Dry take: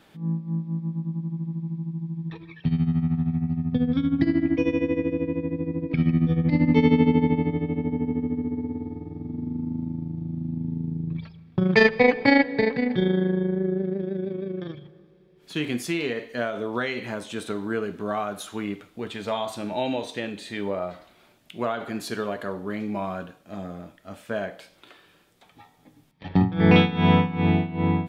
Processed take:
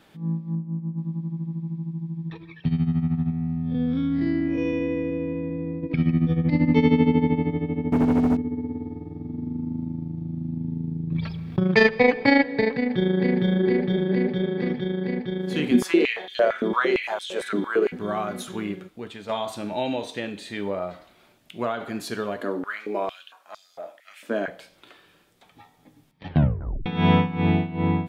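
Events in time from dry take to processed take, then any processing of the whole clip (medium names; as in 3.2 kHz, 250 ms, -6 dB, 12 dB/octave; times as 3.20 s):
0.55–0.98 s: tape spacing loss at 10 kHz 43 dB
3.31–5.83 s: spectral blur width 124 ms
7.92–8.37 s: waveshaping leveller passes 3
11.12–11.60 s: level flattener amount 50%
12.73–13.36 s: echo throw 460 ms, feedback 85%, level -1 dB
15.71–17.92 s: step-sequenced high-pass 8.8 Hz 250–3400 Hz
18.67–19.29 s: fade out, to -7 dB
22.41–24.48 s: step-sequenced high-pass 4.4 Hz 280–4700 Hz
26.29 s: tape stop 0.57 s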